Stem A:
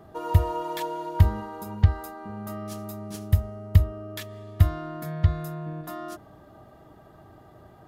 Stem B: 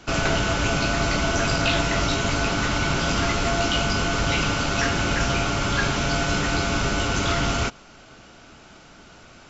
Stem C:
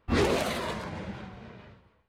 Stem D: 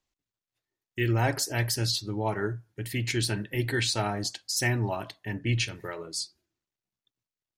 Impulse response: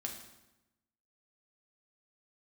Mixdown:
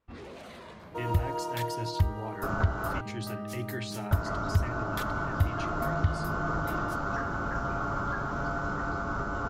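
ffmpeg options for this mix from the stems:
-filter_complex "[0:a]adelay=800,volume=-2.5dB[link_01];[1:a]highshelf=frequency=1800:width_type=q:width=3:gain=-11.5,adelay=2350,volume=-8dB,asplit=3[link_02][link_03][link_04];[link_02]atrim=end=3.01,asetpts=PTS-STARTPTS,afade=type=out:start_time=3.006:duration=0.004:curve=hsin[link_05];[link_03]atrim=start=3.01:end=4.11,asetpts=PTS-STARTPTS,volume=0[link_06];[link_04]atrim=start=4.11,asetpts=PTS-STARTPTS,afade=type=in:duration=0.004:curve=hsin[link_07];[link_05][link_06][link_07]concat=n=3:v=0:a=1[link_08];[2:a]alimiter=level_in=0.5dB:limit=-24dB:level=0:latency=1:release=19,volume=-0.5dB,volume=-12.5dB[link_09];[3:a]acrossover=split=370[link_10][link_11];[link_11]acompressor=threshold=-28dB:ratio=6[link_12];[link_10][link_12]amix=inputs=2:normalize=0,volume=-8dB[link_13];[link_08][link_09][link_13]amix=inputs=3:normalize=0,highshelf=frequency=5900:gain=-6.5,alimiter=limit=-21dB:level=0:latency=1:release=446,volume=0dB[link_14];[link_01][link_14]amix=inputs=2:normalize=0,alimiter=limit=-14.5dB:level=0:latency=1:release=263"

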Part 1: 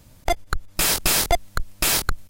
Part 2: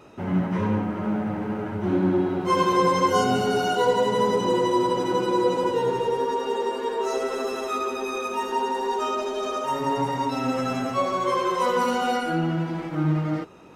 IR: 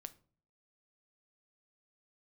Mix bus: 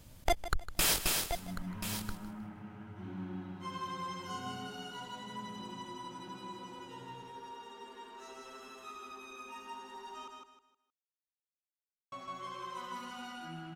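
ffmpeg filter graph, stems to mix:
-filter_complex "[0:a]alimiter=limit=-13dB:level=0:latency=1:release=452,volume=-5dB,afade=type=out:start_time=0.89:duration=0.5:silence=0.281838,asplit=2[link_01][link_02];[link_02]volume=-14dB[link_03];[1:a]equalizer=frequency=460:width_type=o:width=1.1:gain=-12.5,bandreject=frequency=490:width=12,adelay=1150,volume=-18.5dB,asplit=3[link_04][link_05][link_06];[link_04]atrim=end=10.28,asetpts=PTS-STARTPTS,afade=type=out:start_time=10.276:duration=0.004:curve=hsin[link_07];[link_05]atrim=start=10.28:end=12.12,asetpts=PTS-STARTPTS,volume=0[link_08];[link_06]atrim=start=12.12,asetpts=PTS-STARTPTS,afade=type=in:duration=0.004:curve=hsin[link_09];[link_07][link_08][link_09]concat=n=3:v=0:a=1,asplit=2[link_10][link_11];[link_11]volume=-3.5dB[link_12];[link_03][link_12]amix=inputs=2:normalize=0,aecho=0:1:156|312|468|624:1|0.3|0.09|0.027[link_13];[link_01][link_10][link_13]amix=inputs=3:normalize=0,equalizer=frequency=3100:width_type=o:width=0.3:gain=3.5"

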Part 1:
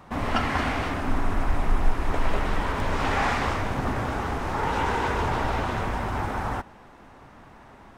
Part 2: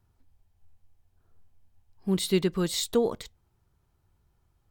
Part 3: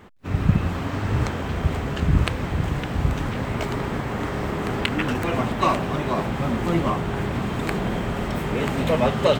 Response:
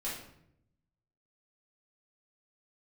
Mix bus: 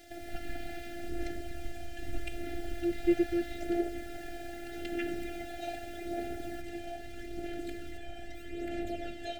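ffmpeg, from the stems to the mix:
-filter_complex "[0:a]equalizer=frequency=125:width_type=o:width=1:gain=6,equalizer=frequency=250:width_type=o:width=1:gain=5,equalizer=frequency=1000:width_type=o:width=1:gain=9,equalizer=frequency=4000:width_type=o:width=1:gain=7,acompressor=threshold=-26dB:ratio=10,acrusher=bits=6:mix=0:aa=0.000001,volume=-9dB[link_01];[1:a]lowpass=frequency=2000:width=0.5412,lowpass=frequency=2000:width=1.3066,adelay=750,volume=0.5dB[link_02];[2:a]aphaser=in_gain=1:out_gain=1:delay=1.3:decay=0.6:speed=0.8:type=sinusoidal,volume=-16.5dB,asplit=2[link_03][link_04];[link_04]volume=-9dB[link_05];[3:a]atrim=start_sample=2205[link_06];[link_05][link_06]afir=irnorm=-1:irlink=0[link_07];[link_01][link_02][link_03][link_07]amix=inputs=4:normalize=0,afftfilt=real='hypot(re,im)*cos(PI*b)':imag='0':win_size=512:overlap=0.75,asuperstop=centerf=1100:order=12:qfactor=1.8"

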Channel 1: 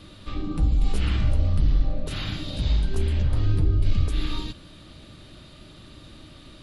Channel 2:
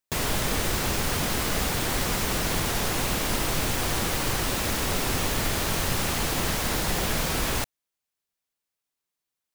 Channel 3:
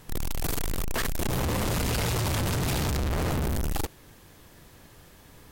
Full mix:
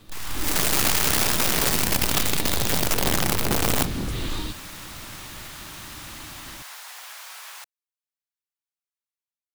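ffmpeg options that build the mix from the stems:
ffmpeg -i stem1.wav -i stem2.wav -i stem3.wav -filter_complex "[0:a]aeval=exprs='0.0668*(abs(mod(val(0)/0.0668+3,4)-2)-1)':channel_layout=same,volume=-7dB[link_01];[1:a]highpass=frequency=850:width=0.5412,highpass=frequency=850:width=1.3066,volume=-9.5dB,afade=type=out:start_time=1.69:duration=0.3:silence=0.316228[link_02];[2:a]bandreject=frequency=820:width=25,bandreject=frequency=56.07:width_type=h:width=4,bandreject=frequency=112.14:width_type=h:width=4,bandreject=frequency=168.21:width_type=h:width=4,aeval=exprs='abs(val(0))':channel_layout=same,volume=-3.5dB[link_03];[link_01][link_02][link_03]amix=inputs=3:normalize=0,dynaudnorm=framelen=160:gausssize=5:maxgain=8.5dB,aeval=exprs='(mod(6.31*val(0)+1,2)-1)/6.31':channel_layout=same" out.wav

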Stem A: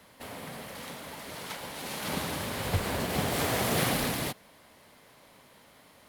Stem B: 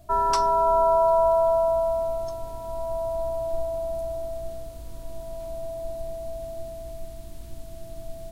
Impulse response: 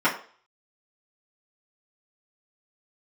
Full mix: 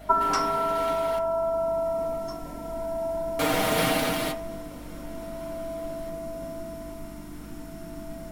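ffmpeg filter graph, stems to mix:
-filter_complex "[0:a]equalizer=frequency=3300:width=1.5:gain=7,aecho=1:1:6.5:0.75,volume=-3dB,asplit=3[link_01][link_02][link_03];[link_01]atrim=end=1.19,asetpts=PTS-STARTPTS,afade=type=out:start_time=1.186:duration=0.004:curve=hsin[link_04];[link_02]atrim=start=1.19:end=3.39,asetpts=PTS-STARTPTS,volume=0[link_05];[link_03]atrim=start=3.39,asetpts=PTS-STARTPTS,afade=type=in:duration=0.004:curve=hsin[link_06];[link_04][link_05][link_06]concat=n=3:v=0:a=1,asplit=2[link_07][link_08];[link_08]volume=-16dB[link_09];[1:a]acompressor=threshold=-22dB:ratio=6,volume=-3.5dB,asplit=2[link_10][link_11];[link_11]volume=-4dB[link_12];[2:a]atrim=start_sample=2205[link_13];[link_09][link_12]amix=inputs=2:normalize=0[link_14];[link_14][link_13]afir=irnorm=-1:irlink=0[link_15];[link_07][link_10][link_15]amix=inputs=3:normalize=0,equalizer=frequency=3300:width_type=o:width=0.77:gain=-4,aeval=exprs='val(0)+0.00447*(sin(2*PI*50*n/s)+sin(2*PI*2*50*n/s)/2+sin(2*PI*3*50*n/s)/3+sin(2*PI*4*50*n/s)/4+sin(2*PI*5*50*n/s)/5)':channel_layout=same"

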